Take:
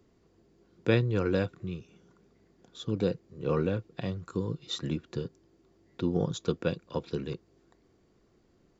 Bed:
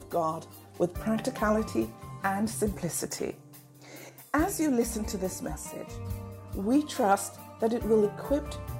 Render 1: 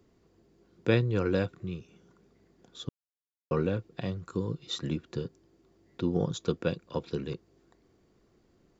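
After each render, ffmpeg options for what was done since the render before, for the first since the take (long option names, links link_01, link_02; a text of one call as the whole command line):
ffmpeg -i in.wav -filter_complex "[0:a]asplit=3[link_01][link_02][link_03];[link_01]atrim=end=2.89,asetpts=PTS-STARTPTS,afade=type=out:start_time=2.886:duration=0.004:curve=hsin[link_04];[link_02]atrim=start=2.89:end=3.51,asetpts=PTS-STARTPTS,volume=0[link_05];[link_03]atrim=start=3.51,asetpts=PTS-STARTPTS,afade=type=in:duration=0.004:curve=hsin[link_06];[link_04][link_05][link_06]concat=n=3:v=0:a=1" out.wav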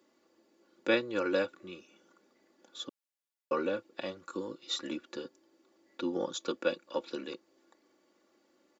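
ffmpeg -i in.wav -af "highpass=400,aecho=1:1:3.5:0.71" out.wav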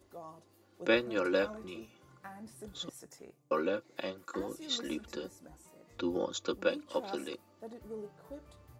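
ffmpeg -i in.wav -i bed.wav -filter_complex "[1:a]volume=-19.5dB[link_01];[0:a][link_01]amix=inputs=2:normalize=0" out.wav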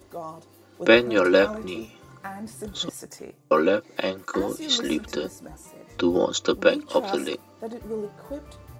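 ffmpeg -i in.wav -af "volume=12dB" out.wav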